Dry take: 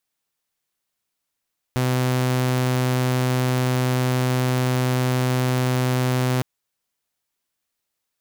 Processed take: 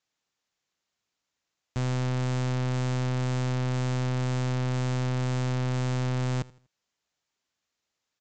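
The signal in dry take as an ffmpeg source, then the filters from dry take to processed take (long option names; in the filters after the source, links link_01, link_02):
-f lavfi -i "aevalsrc='0.158*(2*mod(127*t,1)-1)':duration=4.66:sample_rate=44100"
-af "highpass=43,aresample=16000,asoftclip=type=tanh:threshold=-25dB,aresample=44100,aecho=1:1:81|162|243:0.0841|0.0303|0.0109"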